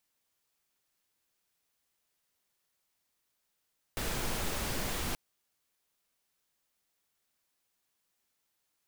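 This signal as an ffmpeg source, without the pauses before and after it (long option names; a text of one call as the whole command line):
ffmpeg -f lavfi -i "anoisesrc=color=pink:amplitude=0.102:duration=1.18:sample_rate=44100:seed=1" out.wav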